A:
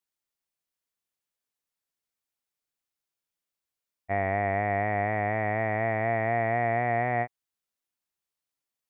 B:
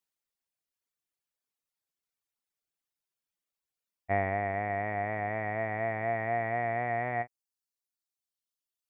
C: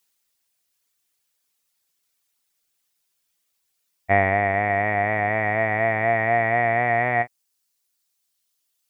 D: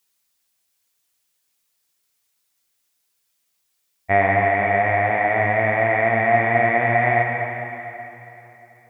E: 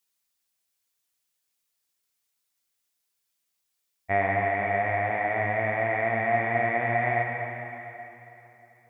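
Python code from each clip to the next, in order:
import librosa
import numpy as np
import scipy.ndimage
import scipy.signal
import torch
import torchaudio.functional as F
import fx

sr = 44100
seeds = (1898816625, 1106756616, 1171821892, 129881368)

y1 = fx.dereverb_blind(x, sr, rt60_s=1.7)
y2 = fx.high_shelf(y1, sr, hz=2100.0, db=9.0)
y2 = F.gain(torch.from_numpy(y2), 9.0).numpy()
y3 = fx.rev_plate(y2, sr, seeds[0], rt60_s=3.2, hf_ratio=0.95, predelay_ms=0, drr_db=0.5)
y4 = y3 + 10.0 ** (-21.5 / 20.0) * np.pad(y3, (int(590 * sr / 1000.0), 0))[:len(y3)]
y4 = F.gain(torch.from_numpy(y4), -7.5).numpy()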